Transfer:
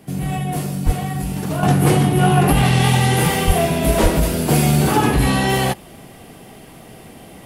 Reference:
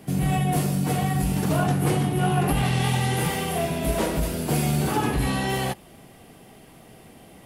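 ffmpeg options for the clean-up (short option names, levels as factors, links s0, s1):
-filter_complex "[0:a]asplit=3[s0][s1][s2];[s0]afade=t=out:st=0.85:d=0.02[s3];[s1]highpass=f=140:w=0.5412,highpass=f=140:w=1.3066,afade=t=in:st=0.85:d=0.02,afade=t=out:st=0.97:d=0.02[s4];[s2]afade=t=in:st=0.97:d=0.02[s5];[s3][s4][s5]amix=inputs=3:normalize=0,asplit=3[s6][s7][s8];[s6]afade=t=out:st=3.46:d=0.02[s9];[s7]highpass=f=140:w=0.5412,highpass=f=140:w=1.3066,afade=t=in:st=3.46:d=0.02,afade=t=out:st=3.58:d=0.02[s10];[s8]afade=t=in:st=3.58:d=0.02[s11];[s9][s10][s11]amix=inputs=3:normalize=0,asplit=3[s12][s13][s14];[s12]afade=t=out:st=4.02:d=0.02[s15];[s13]highpass=f=140:w=0.5412,highpass=f=140:w=1.3066,afade=t=in:st=4.02:d=0.02,afade=t=out:st=4.14:d=0.02[s16];[s14]afade=t=in:st=4.14:d=0.02[s17];[s15][s16][s17]amix=inputs=3:normalize=0,asetnsamples=n=441:p=0,asendcmd='1.63 volume volume -8dB',volume=1"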